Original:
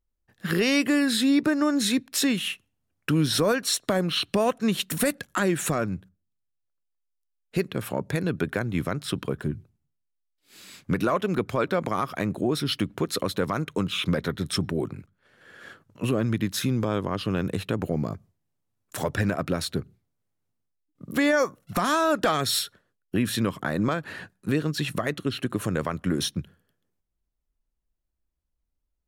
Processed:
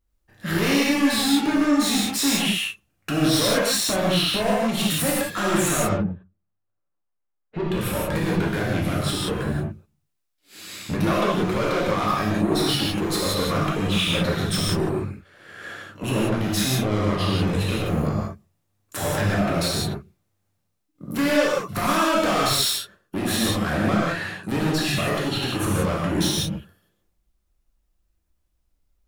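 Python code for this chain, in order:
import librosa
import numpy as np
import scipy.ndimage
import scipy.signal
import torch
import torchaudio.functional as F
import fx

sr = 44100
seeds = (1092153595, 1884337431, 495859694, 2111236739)

y = fx.lowpass(x, sr, hz=1300.0, slope=12, at=(5.78, 7.69))
y = 10.0 ** (-27.5 / 20.0) * np.tanh(y / 10.0 ** (-27.5 / 20.0))
y = fx.rev_gated(y, sr, seeds[0], gate_ms=210, shape='flat', drr_db=-6.0)
y = y * 10.0 ** (3.5 / 20.0)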